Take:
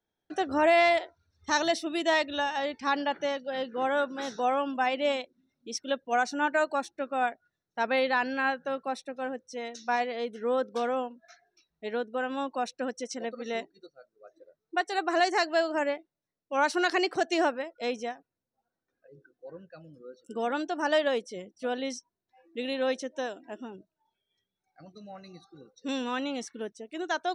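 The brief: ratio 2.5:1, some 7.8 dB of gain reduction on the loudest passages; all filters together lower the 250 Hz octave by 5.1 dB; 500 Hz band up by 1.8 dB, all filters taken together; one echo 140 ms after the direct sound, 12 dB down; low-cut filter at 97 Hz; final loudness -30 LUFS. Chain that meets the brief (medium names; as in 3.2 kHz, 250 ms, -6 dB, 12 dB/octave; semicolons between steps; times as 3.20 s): high-pass 97 Hz; peaking EQ 250 Hz -8.5 dB; peaking EQ 500 Hz +4 dB; compression 2.5:1, threshold -30 dBFS; delay 140 ms -12 dB; trim +3.5 dB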